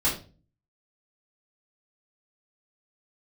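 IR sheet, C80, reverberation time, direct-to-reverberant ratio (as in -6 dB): 13.0 dB, 0.35 s, -9.5 dB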